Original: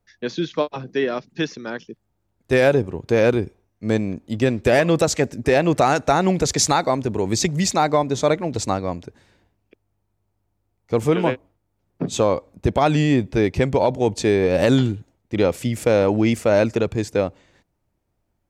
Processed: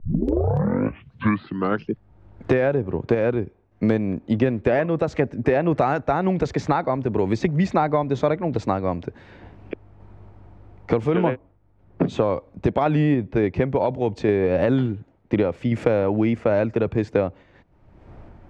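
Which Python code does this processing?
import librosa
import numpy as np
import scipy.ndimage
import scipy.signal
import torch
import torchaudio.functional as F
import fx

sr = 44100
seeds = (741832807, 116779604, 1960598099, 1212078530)

y = fx.tape_start_head(x, sr, length_s=1.98)
y = scipy.signal.sosfilt(scipy.signal.butter(2, 2000.0, 'lowpass', fs=sr, output='sos'), y)
y = fx.tremolo_random(y, sr, seeds[0], hz=3.5, depth_pct=55)
y = fx.band_squash(y, sr, depth_pct=100)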